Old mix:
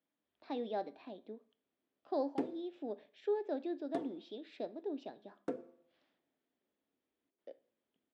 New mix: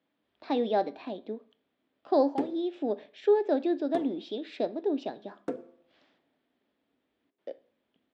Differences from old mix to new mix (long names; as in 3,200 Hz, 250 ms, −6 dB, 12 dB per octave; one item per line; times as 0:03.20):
speech +11.5 dB
background +5.0 dB